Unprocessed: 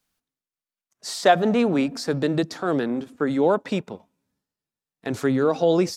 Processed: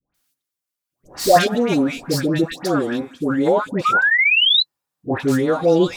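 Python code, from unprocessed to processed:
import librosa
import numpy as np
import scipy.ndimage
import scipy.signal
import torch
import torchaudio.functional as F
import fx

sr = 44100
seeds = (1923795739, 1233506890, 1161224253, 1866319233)

y = fx.tracing_dist(x, sr, depth_ms=0.068)
y = fx.peak_eq(y, sr, hz=950.0, db=10.5, octaves=1.5, at=(3.82, 5.17))
y = fx.spec_paint(y, sr, seeds[0], shape='rise', start_s=3.77, length_s=0.72, low_hz=1200.0, high_hz=4100.0, level_db=-19.0)
y = fx.high_shelf(y, sr, hz=6500.0, db=7.0)
y = fx.notch_comb(y, sr, f0_hz=220.0)
y = fx.dispersion(y, sr, late='highs', ms=145.0, hz=1100.0)
y = y * 10.0 ** (4.5 / 20.0)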